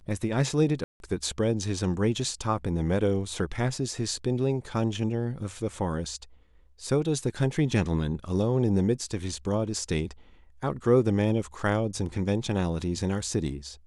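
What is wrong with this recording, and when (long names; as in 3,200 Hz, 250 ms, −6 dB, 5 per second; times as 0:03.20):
0:00.84–0:01.00: drop-out 161 ms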